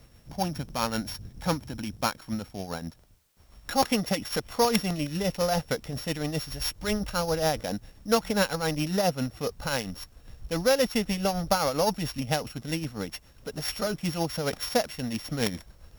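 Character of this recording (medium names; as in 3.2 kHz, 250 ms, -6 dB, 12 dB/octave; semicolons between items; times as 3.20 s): a buzz of ramps at a fixed pitch in blocks of 8 samples; tremolo triangle 7.4 Hz, depth 60%; a quantiser's noise floor 12-bit, dither triangular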